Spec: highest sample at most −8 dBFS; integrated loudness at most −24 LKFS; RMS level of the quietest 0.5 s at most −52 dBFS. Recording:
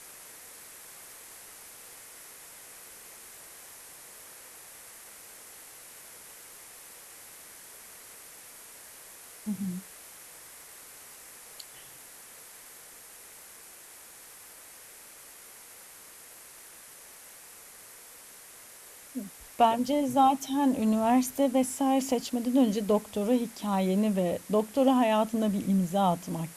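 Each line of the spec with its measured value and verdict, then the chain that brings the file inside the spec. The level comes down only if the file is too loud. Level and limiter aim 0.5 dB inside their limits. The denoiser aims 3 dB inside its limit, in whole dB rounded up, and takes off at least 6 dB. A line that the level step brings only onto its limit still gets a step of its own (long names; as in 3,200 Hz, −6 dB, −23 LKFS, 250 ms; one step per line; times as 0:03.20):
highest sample −10.5 dBFS: in spec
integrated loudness −27.0 LKFS: in spec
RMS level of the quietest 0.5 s −50 dBFS: out of spec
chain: broadband denoise 6 dB, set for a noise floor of −50 dBFS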